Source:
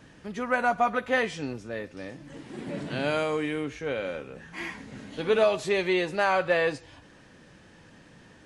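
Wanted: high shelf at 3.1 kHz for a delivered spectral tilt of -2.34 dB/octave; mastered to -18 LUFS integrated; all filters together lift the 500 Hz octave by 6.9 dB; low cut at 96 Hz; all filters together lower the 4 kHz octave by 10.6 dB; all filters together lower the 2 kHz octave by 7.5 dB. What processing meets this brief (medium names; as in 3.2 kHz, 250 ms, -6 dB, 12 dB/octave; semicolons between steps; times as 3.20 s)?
high-pass 96 Hz; peaking EQ 500 Hz +9 dB; peaking EQ 2 kHz -8 dB; treble shelf 3.1 kHz -4 dB; peaking EQ 4 kHz -8 dB; trim +5 dB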